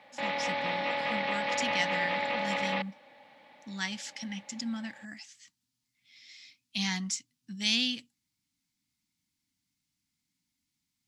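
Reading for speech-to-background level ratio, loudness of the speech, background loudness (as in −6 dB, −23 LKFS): −3.5 dB, −34.5 LKFS, −31.0 LKFS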